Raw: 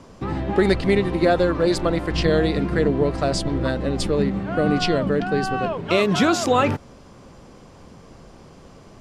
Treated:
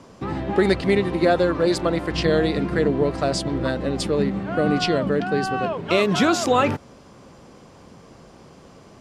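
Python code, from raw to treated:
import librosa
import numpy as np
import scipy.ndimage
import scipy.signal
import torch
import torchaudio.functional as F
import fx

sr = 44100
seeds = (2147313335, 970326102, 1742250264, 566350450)

y = fx.highpass(x, sr, hz=100.0, slope=6)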